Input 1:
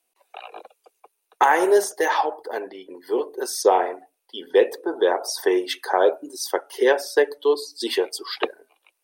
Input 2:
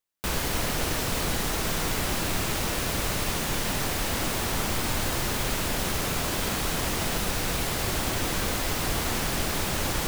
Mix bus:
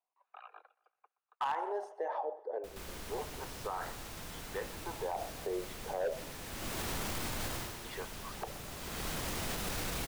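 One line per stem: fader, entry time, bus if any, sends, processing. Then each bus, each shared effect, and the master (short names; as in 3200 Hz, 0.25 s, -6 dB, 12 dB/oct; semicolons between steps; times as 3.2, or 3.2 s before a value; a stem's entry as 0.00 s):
-4.0 dB, 0.00 s, muted 6.32–7.84, no send, echo send -23 dB, wah 0.3 Hz 530–1500 Hz, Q 3.8; hard clip -17.5 dBFS, distortion -14 dB
-2.0 dB, 2.40 s, no send, echo send -17.5 dB, auto duck -24 dB, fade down 0.40 s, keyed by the first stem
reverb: off
echo: feedback echo 0.123 s, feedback 46%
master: limiter -28 dBFS, peak gain reduction 12 dB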